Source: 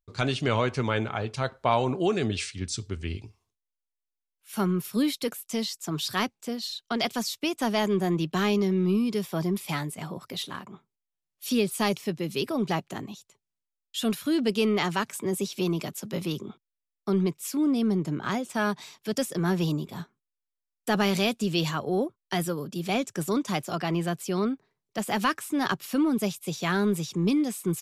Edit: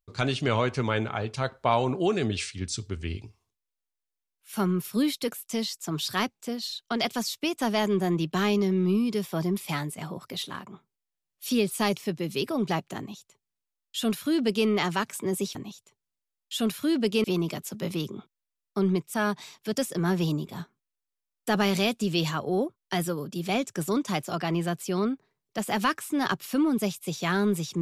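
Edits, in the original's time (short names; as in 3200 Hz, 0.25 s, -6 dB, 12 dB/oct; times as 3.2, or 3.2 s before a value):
12.98–14.67 copy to 15.55
17.45–18.54 cut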